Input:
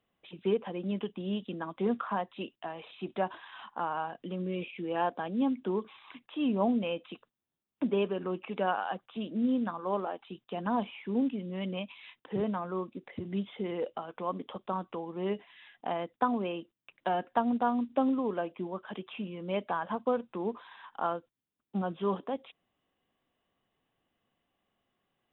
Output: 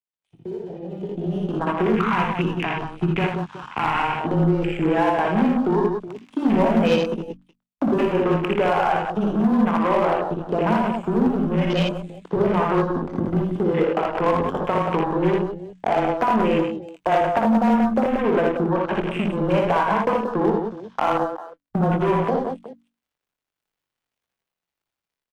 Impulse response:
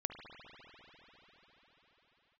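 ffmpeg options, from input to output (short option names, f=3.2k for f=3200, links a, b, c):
-filter_complex "[0:a]aeval=exprs='val(0)+0.5*0.0299*sgn(val(0))':c=same,lowshelf=f=120:g=-3.5,acrusher=bits=4:mix=0:aa=0.5,acompressor=threshold=-33dB:ratio=6,asplit=2[a][b];[b]adelay=21,volume=-12dB[c];[a][c]amix=inputs=2:normalize=0,aecho=1:1:42|59|82|161|182|370:0.141|0.668|0.631|0.224|0.501|0.211,dynaudnorm=f=880:g=3:m=14dB,afwtdn=0.0355,asettb=1/sr,asplit=3[d][e][f];[d]atrim=end=1.964[g];[e]atrim=start=1.96:end=4.2,asetpts=PTS-STARTPTS,afade=t=in:d=0.004:c=qsin,afade=t=out:st=2.236:d=0.004:c=qsin,equalizer=f=160:t=o:w=0.67:g=8,equalizer=f=630:t=o:w=0.67:g=-11,equalizer=f=2.5k:t=o:w=0.67:g=8[h];[f]atrim=start=4.196[i];[g][h]acrossfade=d=0.004:c1=hsin:c2=qsin[j];[j][i]acrossfade=d=0.004:c1=qsin:c2=hsin,volume=11.5dB,asoftclip=hard,volume=-11.5dB,bandreject=f=50:t=h:w=6,bandreject=f=100:t=h:w=6,bandreject=f=150:t=h:w=6,bandreject=f=200:t=h:w=6,bandreject=f=250:t=h:w=6,bandreject=f=300:t=h:w=6,afreqshift=-17"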